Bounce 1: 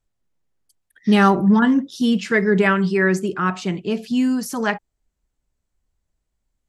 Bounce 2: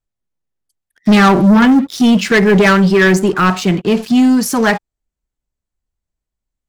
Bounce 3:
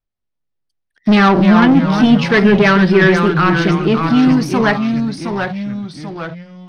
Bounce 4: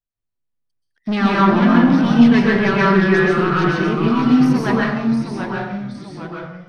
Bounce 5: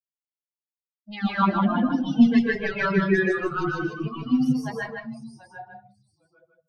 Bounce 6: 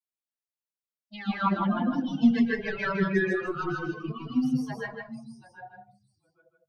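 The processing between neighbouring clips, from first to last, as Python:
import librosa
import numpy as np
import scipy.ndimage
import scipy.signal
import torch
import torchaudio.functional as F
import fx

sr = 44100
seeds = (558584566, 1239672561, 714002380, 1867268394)

y1 = fx.leveller(x, sr, passes=3)
y2 = fx.echo_pitch(y1, sr, ms=164, semitones=-2, count=3, db_per_echo=-6.0)
y2 = scipy.signal.savgol_filter(y2, 15, 4, mode='constant')
y2 = fx.hum_notches(y2, sr, base_hz=60, count=3)
y2 = F.gain(torch.from_numpy(y2), -1.5).numpy()
y3 = fx.rev_plate(y2, sr, seeds[0], rt60_s=0.81, hf_ratio=0.5, predelay_ms=115, drr_db=-4.5)
y3 = F.gain(torch.from_numpy(y3), -10.0).numpy()
y4 = fx.bin_expand(y3, sr, power=3.0)
y4 = y4 + 10.0 ** (-5.0 / 20.0) * np.pad(y4, (int(156 * sr / 1000.0), 0))[:len(y4)]
y4 = F.gain(torch.from_numpy(y4), -2.5).numpy()
y5 = fx.dispersion(y4, sr, late='lows', ms=43.0, hz=1700.0)
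y5 = F.gain(torch.from_numpy(y5), -4.5).numpy()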